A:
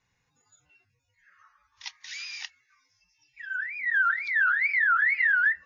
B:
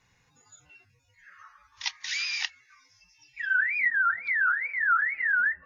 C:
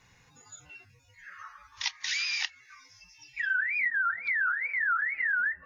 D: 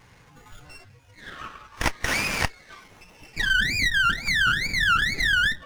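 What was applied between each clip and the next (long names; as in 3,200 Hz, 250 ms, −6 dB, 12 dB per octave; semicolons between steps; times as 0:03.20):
treble cut that deepens with the level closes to 930 Hz, closed at −24.5 dBFS; level +8 dB
downward compressor 2.5 to 1, threshold −36 dBFS, peak gain reduction 11 dB; level +5.5 dB
windowed peak hold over 9 samples; level +9 dB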